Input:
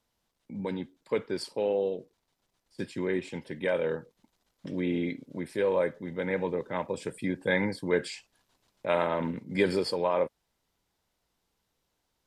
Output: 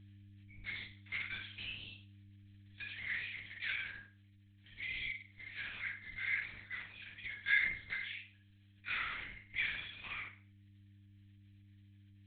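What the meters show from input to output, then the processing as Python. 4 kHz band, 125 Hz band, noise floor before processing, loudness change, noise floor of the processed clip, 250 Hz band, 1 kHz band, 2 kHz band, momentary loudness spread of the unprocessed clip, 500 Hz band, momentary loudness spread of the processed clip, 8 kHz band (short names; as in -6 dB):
-3.0 dB, -15.0 dB, -79 dBFS, -9.0 dB, -64 dBFS, -29.0 dB, -18.0 dB, +0.5 dB, 11 LU, under -40 dB, 14 LU, under -30 dB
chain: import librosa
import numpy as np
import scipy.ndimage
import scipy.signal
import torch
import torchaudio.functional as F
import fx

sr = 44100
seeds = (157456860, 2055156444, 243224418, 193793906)

p1 = fx.lowpass(x, sr, hz=2000.0, slope=6)
p2 = p1 + fx.room_flutter(p1, sr, wall_m=8.3, rt60_s=0.38, dry=0)
p3 = fx.hpss(p2, sr, part='percussive', gain_db=-13)
p4 = scipy.signal.sosfilt(scipy.signal.cheby2(4, 50, [150.0, 830.0], 'bandstop', fs=sr, output='sos'), p3)
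p5 = fx.lpc_vocoder(p4, sr, seeds[0], excitation='whisper', order=8)
p6 = fx.dmg_buzz(p5, sr, base_hz=100.0, harmonics=3, level_db=-73.0, tilt_db=-9, odd_only=False)
p7 = fx.rider(p6, sr, range_db=10, speed_s=2.0)
p8 = p6 + (p7 * 10.0 ** (2.0 / 20.0))
y = p8 * 10.0 ** (2.0 / 20.0)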